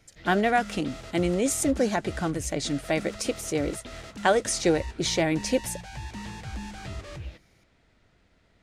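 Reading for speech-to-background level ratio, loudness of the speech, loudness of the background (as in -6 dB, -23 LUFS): 13.5 dB, -26.5 LUFS, -40.0 LUFS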